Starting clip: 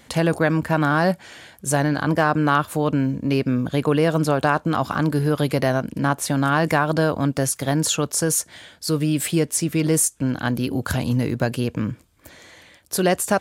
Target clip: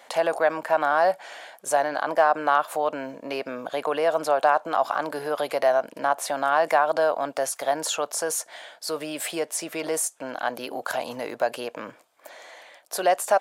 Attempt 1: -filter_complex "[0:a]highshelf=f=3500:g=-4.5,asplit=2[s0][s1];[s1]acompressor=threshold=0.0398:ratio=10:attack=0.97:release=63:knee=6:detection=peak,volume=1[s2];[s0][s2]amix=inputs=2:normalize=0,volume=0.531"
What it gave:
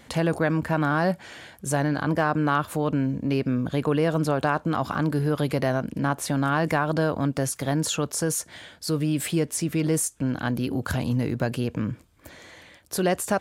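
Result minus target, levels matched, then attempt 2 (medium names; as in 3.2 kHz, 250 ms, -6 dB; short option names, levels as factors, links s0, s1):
500 Hz band -3.5 dB
-filter_complex "[0:a]highpass=f=670:t=q:w=2.6,highshelf=f=3500:g=-4.5,asplit=2[s0][s1];[s1]acompressor=threshold=0.0398:ratio=10:attack=0.97:release=63:knee=6:detection=peak,volume=1[s2];[s0][s2]amix=inputs=2:normalize=0,volume=0.531"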